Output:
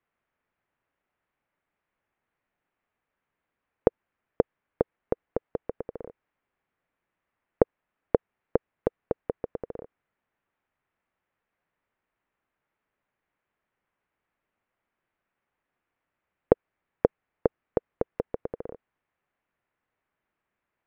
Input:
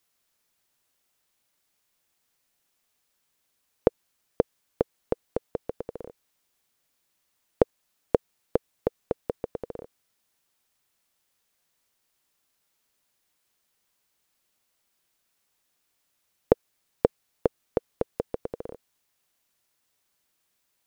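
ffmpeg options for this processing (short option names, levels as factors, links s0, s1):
-af "lowpass=f=2200:w=0.5412,lowpass=f=2200:w=1.3066"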